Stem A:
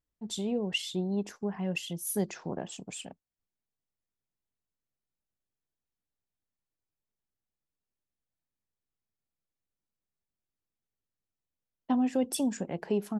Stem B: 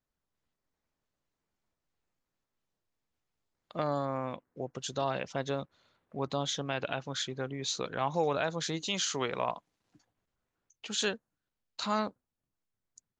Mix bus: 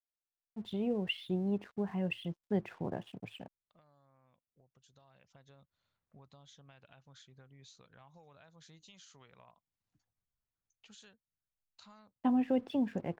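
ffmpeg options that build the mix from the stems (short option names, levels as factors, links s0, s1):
-filter_complex "[0:a]lowpass=f=3100:w=0.5412,lowpass=f=3100:w=1.3066,equalizer=f=110:t=o:w=0.4:g=12.5,aeval=exprs='sgn(val(0))*max(abs(val(0))-0.00106,0)':c=same,adelay=350,volume=0.75[s0];[1:a]lowshelf=f=160:g=-8,acompressor=threshold=0.00708:ratio=4,asubboost=boost=8:cutoff=120,volume=0.188,afade=t=in:st=4.86:d=0.76:silence=0.398107[s1];[s0][s1]amix=inputs=2:normalize=0"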